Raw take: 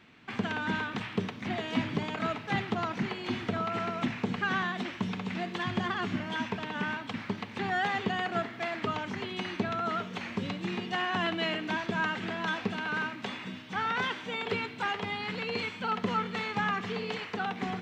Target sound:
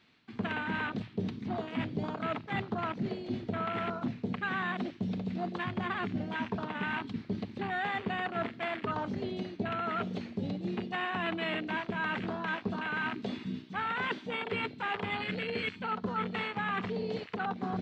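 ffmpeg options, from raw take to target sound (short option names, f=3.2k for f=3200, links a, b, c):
-af "afwtdn=0.02,equalizer=f=4.3k:t=o:w=0.71:g=9.5,areverse,acompressor=threshold=-40dB:ratio=4,areverse,volume=7.5dB"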